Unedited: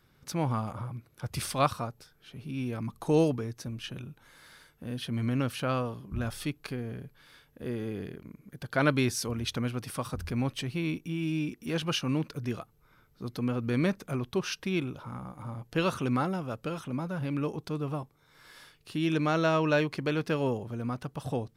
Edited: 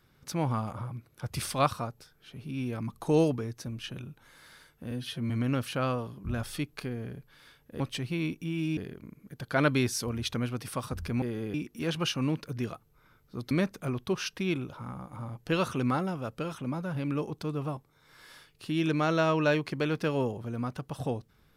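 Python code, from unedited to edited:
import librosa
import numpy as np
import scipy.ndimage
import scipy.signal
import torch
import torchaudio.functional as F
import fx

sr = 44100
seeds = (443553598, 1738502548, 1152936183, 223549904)

y = fx.edit(x, sr, fx.stretch_span(start_s=4.91, length_s=0.26, factor=1.5),
    fx.swap(start_s=7.67, length_s=0.32, other_s=10.44, other_length_s=0.97),
    fx.cut(start_s=13.38, length_s=0.39), tone=tone)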